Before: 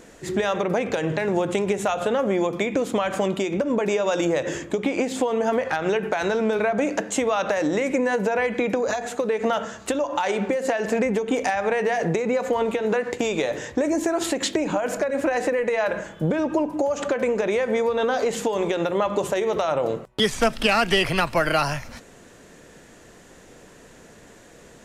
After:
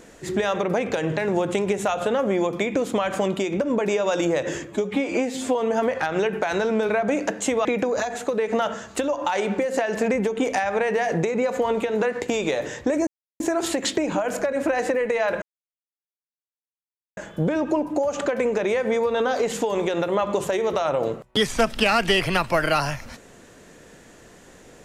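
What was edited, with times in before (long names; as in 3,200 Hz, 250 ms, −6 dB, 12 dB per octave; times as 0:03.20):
0:04.65–0:05.25: time-stretch 1.5×
0:07.35–0:08.56: remove
0:13.98: splice in silence 0.33 s
0:16.00: splice in silence 1.75 s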